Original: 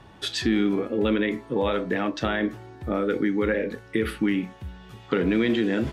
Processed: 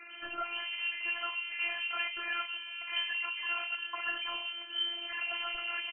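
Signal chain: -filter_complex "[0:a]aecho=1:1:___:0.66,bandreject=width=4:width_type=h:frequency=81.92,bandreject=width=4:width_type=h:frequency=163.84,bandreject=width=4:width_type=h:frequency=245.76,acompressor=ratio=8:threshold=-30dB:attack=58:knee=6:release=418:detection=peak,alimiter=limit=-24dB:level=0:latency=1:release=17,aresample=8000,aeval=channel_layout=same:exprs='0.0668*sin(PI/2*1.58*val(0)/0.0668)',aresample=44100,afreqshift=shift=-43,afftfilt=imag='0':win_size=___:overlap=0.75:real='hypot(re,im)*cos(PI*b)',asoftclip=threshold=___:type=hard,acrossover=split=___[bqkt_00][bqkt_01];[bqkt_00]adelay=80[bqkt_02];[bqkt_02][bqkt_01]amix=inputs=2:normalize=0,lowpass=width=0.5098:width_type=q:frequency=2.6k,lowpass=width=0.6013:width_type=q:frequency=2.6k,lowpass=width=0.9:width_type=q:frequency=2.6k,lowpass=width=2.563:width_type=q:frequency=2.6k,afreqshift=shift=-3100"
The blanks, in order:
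4.9, 512, -23dB, 420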